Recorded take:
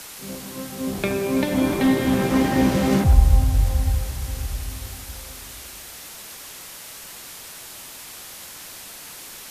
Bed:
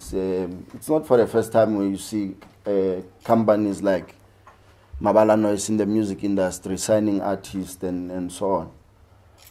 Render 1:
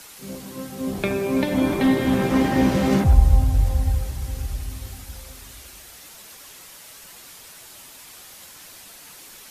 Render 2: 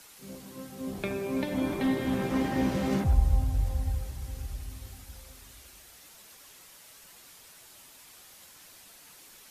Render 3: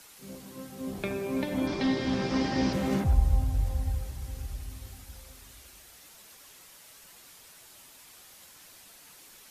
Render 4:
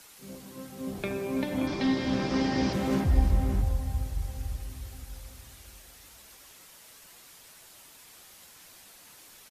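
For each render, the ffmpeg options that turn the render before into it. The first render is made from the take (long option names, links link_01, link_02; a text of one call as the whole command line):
ffmpeg -i in.wav -af "afftdn=noise_reduction=6:noise_floor=-40" out.wav
ffmpeg -i in.wav -af "volume=-9dB" out.wav
ffmpeg -i in.wav -filter_complex "[0:a]asettb=1/sr,asplit=3[link_01][link_02][link_03];[link_01]atrim=end=1.674[link_04];[link_02]atrim=start=1.67:end=2.73,asetpts=PTS-STARTPTS,afade=type=in:duration=0.004:curve=qsin,afade=type=out:start_time=1.056:duration=0.004:curve=qsin,lowpass=frequency=5100:width_type=q:width=4.4[link_05];[link_03]atrim=start=2.726[link_06];[link_04][link_05]acrossfade=duration=0.004:curve1=hsin:curve2=qsin[link_07];[link_07][link_06]acrossfade=duration=0.004:curve1=qsin:curve2=hsin" out.wav
ffmpeg -i in.wav -filter_complex "[0:a]asplit=2[link_01][link_02];[link_02]adelay=577.3,volume=-7dB,highshelf=frequency=4000:gain=-13[link_03];[link_01][link_03]amix=inputs=2:normalize=0" out.wav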